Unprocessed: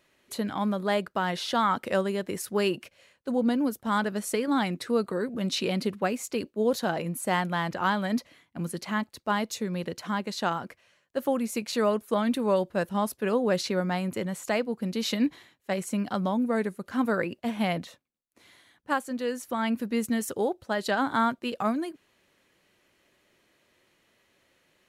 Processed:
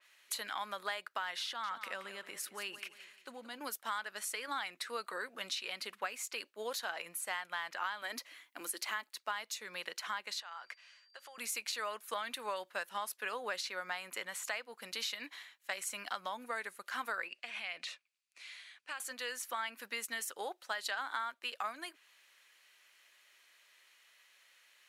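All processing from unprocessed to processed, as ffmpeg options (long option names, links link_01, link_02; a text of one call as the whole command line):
ffmpeg -i in.wav -filter_complex "[0:a]asettb=1/sr,asplit=3[link_01][link_02][link_03];[link_01]atrim=end=1.464[link_04];[link_02]atrim=start=1.46:end=3.61,asetpts=PTS-STARTPTS,afade=type=in:duration=0.004:curve=qsin,afade=type=out:start_time=2.146:duration=0.004:curve=qsin,bass=frequency=250:gain=13,treble=frequency=4000:gain=-2,acompressor=threshold=-32dB:ratio=2.5:attack=3.2:release=140:knee=1:detection=peak,aecho=1:1:175|350|525|700:0.211|0.0782|0.0289|0.0107,atrim=end_sample=94815[link_05];[link_03]atrim=start=3.606[link_06];[link_04][link_05]acrossfade=duration=0.004:curve1=hsin:curve2=qsin[link_07];[link_07][link_06]acrossfade=duration=0.004:curve1=qsin:curve2=hsin,asettb=1/sr,asplit=3[link_08][link_09][link_10];[link_08]atrim=end=8.024[link_11];[link_09]atrim=start=8.02:end=9.13,asetpts=PTS-STARTPTS,afade=type=in:duration=0.004:curve=qsin,afade=type=out:start_time=1.106:duration=0.004:curve=qsin,highpass=frequency=300:width_type=q:width=3.4,highshelf=frequency=10000:gain=7.5[link_12];[link_10]atrim=start=9.126[link_13];[link_11][link_12]acrossfade=duration=0.004:curve1=hsin:curve2=qsin[link_14];[link_14][link_13]acrossfade=duration=0.004:curve1=qsin:curve2=hsin,asettb=1/sr,asplit=3[link_15][link_16][link_17];[link_15]atrim=end=10.404[link_18];[link_16]atrim=start=10.4:end=11.38,asetpts=PTS-STARTPTS,afade=type=in:duration=0.004:curve=qsin,afade=type=out:start_time=0.976:duration=0.004:curve=qsin,acompressor=threshold=-39dB:ratio=6:attack=3.2:release=140:knee=1:detection=peak,aeval=exprs='val(0)+0.000355*sin(2*PI*4700*n/s)':channel_layout=same,highpass=550,lowpass=7100[link_19];[link_17]atrim=start=11.376[link_20];[link_18][link_19]acrossfade=duration=0.004:curve1=hsin:curve2=qsin[link_21];[link_21][link_20]acrossfade=duration=0.004:curve1=qsin:curve2=hsin,asettb=1/sr,asplit=3[link_22][link_23][link_24];[link_22]atrim=end=17.284[link_25];[link_23]atrim=start=17.28:end=19,asetpts=PTS-STARTPTS,afade=type=in:duration=0.004:curve=qsin,afade=type=out:start_time=1.716:duration=0.004:curve=qsin,acompressor=threshold=-35dB:ratio=8:attack=3.2:release=140:knee=1:detection=peak,highpass=120,equalizer=frequency=920:width_type=q:width=4:gain=-5,equalizer=frequency=2500:width_type=q:width=4:gain=10,equalizer=frequency=4600:width_type=q:width=4:gain=5,lowpass=frequency=9800:width=0.5412,lowpass=frequency=9800:width=1.3066[link_26];[link_24]atrim=start=18.996[link_27];[link_25][link_26]acrossfade=duration=0.004:curve1=hsin:curve2=qsin[link_28];[link_28][link_27]acrossfade=duration=0.004:curve1=qsin:curve2=hsin,highpass=1400,acompressor=threshold=-39dB:ratio=6,adynamicequalizer=threshold=0.00126:dfrequency=3400:dqfactor=0.7:tfrequency=3400:tqfactor=0.7:attack=5:release=100:ratio=0.375:range=2:mode=cutabove:tftype=highshelf,volume=4.5dB" out.wav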